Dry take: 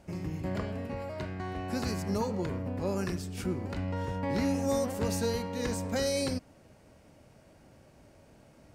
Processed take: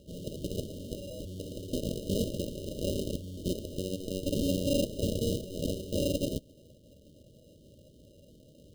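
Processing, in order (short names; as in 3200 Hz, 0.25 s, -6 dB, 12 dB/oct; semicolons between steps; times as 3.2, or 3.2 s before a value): added harmonics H 7 -10 dB, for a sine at -20 dBFS; sample-and-hold 39×; FFT band-reject 640–2800 Hz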